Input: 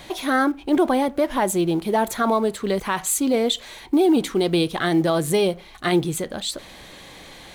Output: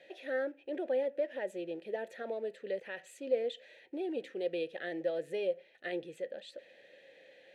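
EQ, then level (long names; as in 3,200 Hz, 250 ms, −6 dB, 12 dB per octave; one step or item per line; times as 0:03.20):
formant filter e
high-pass filter 94 Hz
−4.5 dB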